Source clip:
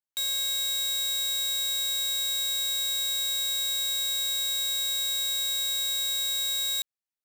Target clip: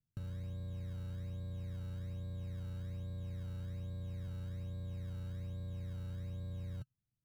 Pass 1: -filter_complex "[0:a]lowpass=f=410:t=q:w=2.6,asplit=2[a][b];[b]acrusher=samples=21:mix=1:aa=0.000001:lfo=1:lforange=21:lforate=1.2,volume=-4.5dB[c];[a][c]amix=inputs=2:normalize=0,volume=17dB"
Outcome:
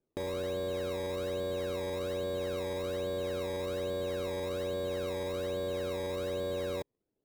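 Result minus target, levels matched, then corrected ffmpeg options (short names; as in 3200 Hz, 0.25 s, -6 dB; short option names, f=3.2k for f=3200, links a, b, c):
500 Hz band +16.5 dB
-filter_complex "[0:a]lowpass=f=130:t=q:w=2.6,asplit=2[a][b];[b]acrusher=samples=21:mix=1:aa=0.000001:lfo=1:lforange=21:lforate=1.2,volume=-4.5dB[c];[a][c]amix=inputs=2:normalize=0,volume=17dB"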